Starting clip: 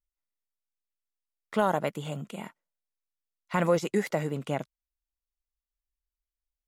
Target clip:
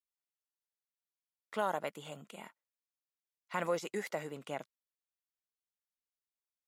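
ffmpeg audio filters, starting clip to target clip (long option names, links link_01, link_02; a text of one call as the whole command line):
ffmpeg -i in.wav -af "highpass=frequency=520:poles=1,volume=-6dB" out.wav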